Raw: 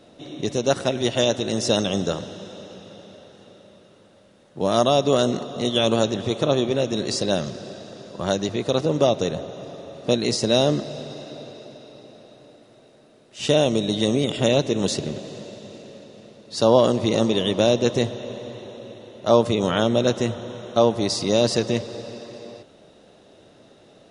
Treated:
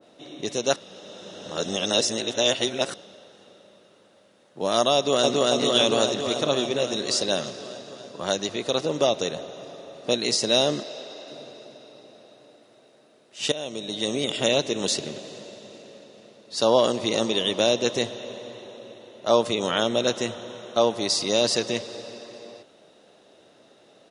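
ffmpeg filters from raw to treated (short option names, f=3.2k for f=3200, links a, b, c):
-filter_complex "[0:a]asplit=2[a][b];[b]afade=t=in:st=4.95:d=0.01,afade=t=out:st=5.48:d=0.01,aecho=0:1:280|560|840|1120|1400|1680|1960|2240|2520|2800|3080|3360:0.944061|0.708046|0.531034|0.398276|0.298707|0.22403|0.168023|0.126017|0.0945127|0.0708845|0.0531634|0.0398725[c];[a][c]amix=inputs=2:normalize=0,asettb=1/sr,asplit=3[d][e][f];[d]atrim=end=10.834[g];[e]atrim=start=10.83:end=11.28,asetpts=PTS-STARTPTS,afade=t=in:d=0.004:c=qsin,afade=t=out:st=0.446:d=0.004:c=qsin,highpass=320,lowpass=6.8k[h];[f]atrim=start=11.276[i];[g][h]acrossfade=d=0.004:c1=hsin:c2=qsin[j];[j][i]acrossfade=d=0.004:c1=qsin:c2=hsin,asplit=4[k][l][m][n];[k]atrim=end=0.762[o];[l]atrim=start=0.758:end=2.942,asetpts=PTS-STARTPTS,areverse[p];[m]atrim=start=2.938:end=13.52,asetpts=PTS-STARTPTS,afade=t=out:st=10.578:d=0.004:c=hsin:silence=0.149624[q];[n]atrim=start=13.52,asetpts=PTS-STARTPTS,afade=t=in:d=0.74:silence=0.149624[r];[o][p]acrossfade=d=0.004:c1=hsin:c2=hsin[s];[q][r]concat=n=2:v=0:a=1[t];[s][t]acrossfade=d=0.004:c1=hsin:c2=hsin,highpass=f=370:p=1,adynamicequalizer=threshold=0.0141:dfrequency=1800:dqfactor=0.7:tfrequency=1800:tqfactor=0.7:attack=5:release=100:ratio=0.375:range=2:mode=boostabove:tftype=highshelf,volume=-1.5dB"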